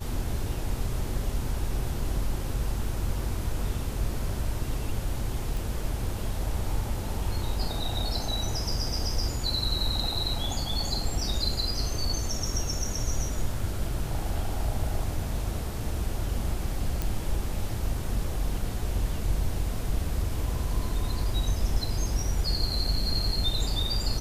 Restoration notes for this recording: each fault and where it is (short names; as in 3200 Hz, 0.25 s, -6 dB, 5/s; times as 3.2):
5.57 pop
17.02 pop